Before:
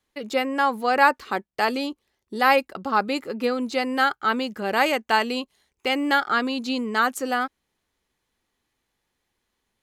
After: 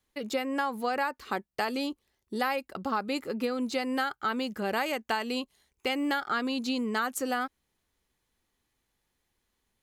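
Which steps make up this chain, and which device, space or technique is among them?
ASMR close-microphone chain (low shelf 150 Hz +6 dB; compressor 10:1, threshold -22 dBFS, peak gain reduction 12 dB; high shelf 7800 Hz +6 dB); gain -3.5 dB

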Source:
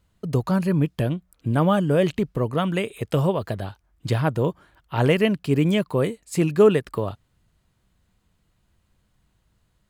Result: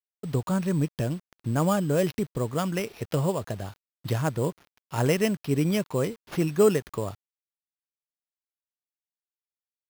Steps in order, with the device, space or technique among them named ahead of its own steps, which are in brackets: early 8-bit sampler (sample-rate reducer 8100 Hz, jitter 0%; bit-crush 8-bit); gain -4.5 dB

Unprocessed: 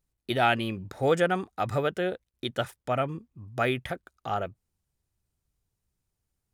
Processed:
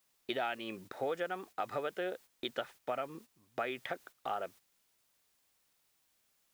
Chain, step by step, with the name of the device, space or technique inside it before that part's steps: baby monitor (BPF 340–4200 Hz; compressor 6:1, threshold -32 dBFS, peak gain reduction 13 dB; white noise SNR 24 dB; gate -52 dBFS, range -10 dB); gain -1 dB

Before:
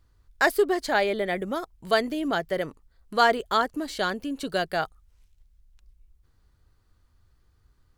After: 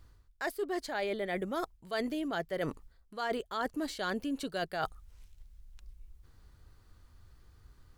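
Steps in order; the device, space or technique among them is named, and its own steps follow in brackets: compression on the reversed sound (reverse; compressor 16:1, threshold -36 dBFS, peak gain reduction 22.5 dB; reverse); gain +5 dB

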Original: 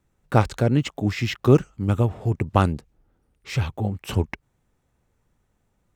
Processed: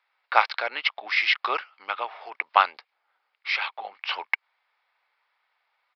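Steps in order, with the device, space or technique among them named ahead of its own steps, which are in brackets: musical greeting card (downsampling 11025 Hz; HPF 860 Hz 24 dB/oct; bell 2200 Hz +7.5 dB 0.21 oct); gain +6.5 dB

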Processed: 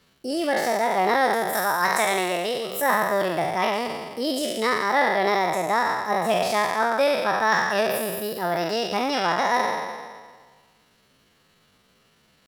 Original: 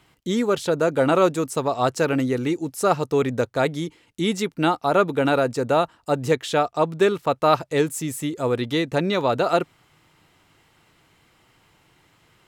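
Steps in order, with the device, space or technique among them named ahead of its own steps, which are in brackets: spectral trails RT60 1.59 s; chipmunk voice (pitch shift +6 st); 1.53–2.82 tilt shelf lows -4.5 dB, about 690 Hz; gain -5 dB

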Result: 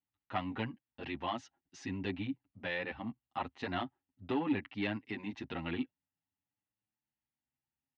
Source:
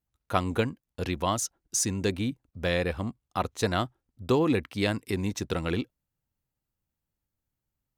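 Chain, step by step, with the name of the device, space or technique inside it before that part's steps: barber-pole flanger into a guitar amplifier (endless flanger 7.8 ms +0.47 Hz; soft clip -19.5 dBFS, distortion -18 dB; speaker cabinet 94–3900 Hz, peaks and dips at 270 Hz +8 dB, 480 Hz -7 dB, 830 Hz +9 dB, 1900 Hz +8 dB, 2800 Hz +7 dB); gain -7.5 dB

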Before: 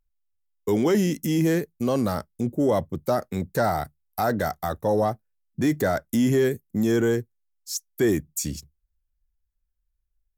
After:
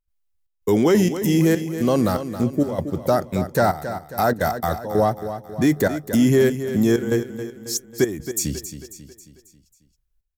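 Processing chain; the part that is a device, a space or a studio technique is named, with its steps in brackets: trance gate with a delay (step gate ".xxxxx..xxxxxx" 194 bpm -12 dB; feedback echo 0.271 s, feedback 49%, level -11 dB); gain +4.5 dB

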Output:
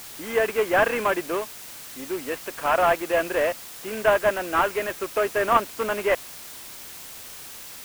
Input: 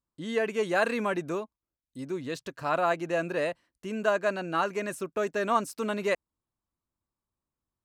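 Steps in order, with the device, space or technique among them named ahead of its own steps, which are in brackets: army field radio (BPF 400–3100 Hz; CVSD 16 kbps; white noise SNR 15 dB); gain +8 dB

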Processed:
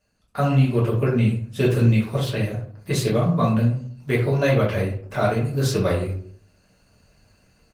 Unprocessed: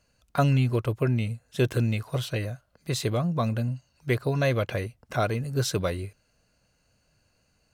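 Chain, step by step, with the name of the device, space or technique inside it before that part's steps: speakerphone in a meeting room (reverb RT60 0.55 s, pre-delay 5 ms, DRR -6 dB; speakerphone echo 0.1 s, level -30 dB; AGC gain up to 10.5 dB; gain -6 dB; Opus 20 kbps 48000 Hz)

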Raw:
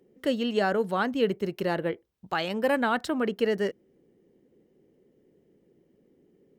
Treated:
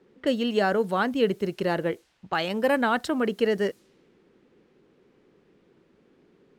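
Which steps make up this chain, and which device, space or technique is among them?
cassette deck with a dynamic noise filter (white noise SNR 34 dB; low-pass opened by the level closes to 2000 Hz, open at -26 dBFS); gain +2 dB

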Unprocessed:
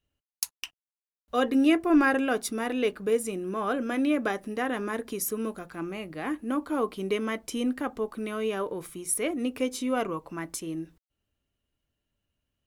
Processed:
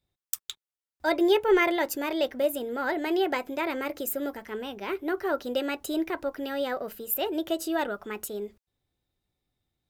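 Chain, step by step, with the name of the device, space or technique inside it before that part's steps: nightcore (varispeed +28%)

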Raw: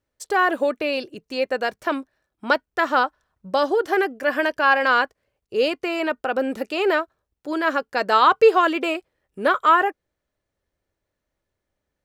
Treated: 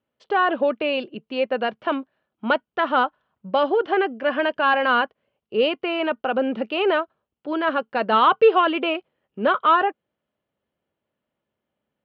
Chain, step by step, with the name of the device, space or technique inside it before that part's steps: overdrive pedal into a guitar cabinet (overdrive pedal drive 9 dB, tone 1100 Hz, clips at -4 dBFS; speaker cabinet 88–4000 Hz, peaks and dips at 150 Hz +7 dB, 220 Hz +10 dB, 1800 Hz -4 dB, 3000 Hz +9 dB)

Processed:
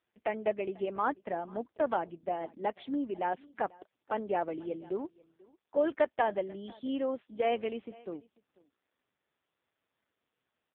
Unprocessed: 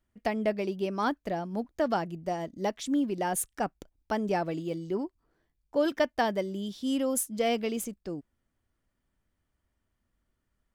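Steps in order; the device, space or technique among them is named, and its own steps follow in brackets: satellite phone (BPF 340–3200 Hz; echo 0.491 s -23.5 dB; AMR-NB 5.15 kbps 8000 Hz)

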